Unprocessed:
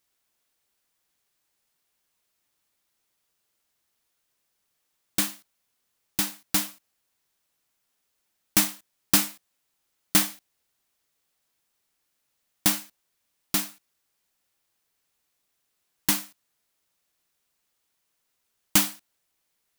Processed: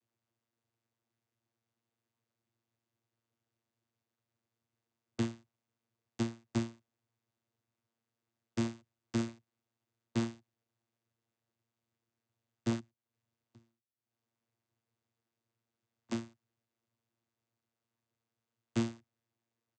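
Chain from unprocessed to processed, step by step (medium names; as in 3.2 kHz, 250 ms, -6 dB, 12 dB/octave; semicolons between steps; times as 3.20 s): bass shelf 410 Hz +6 dB; comb 6.3 ms, depth 54%; peak limiter -11 dBFS, peak gain reduction 9.5 dB; 12.79–16.11 s: compression 8:1, threshold -57 dBFS, peak gain reduction 34.5 dB; half-wave rectifier; vocoder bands 16, saw 115 Hz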